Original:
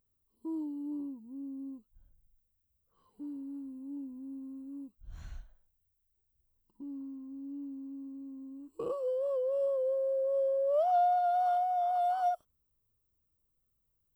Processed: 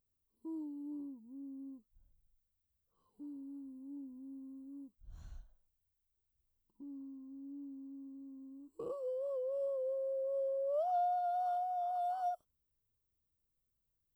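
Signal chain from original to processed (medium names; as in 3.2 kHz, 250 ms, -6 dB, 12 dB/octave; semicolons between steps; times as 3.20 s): peaking EQ 2.1 kHz -10.5 dB 0.92 oct; trim -6 dB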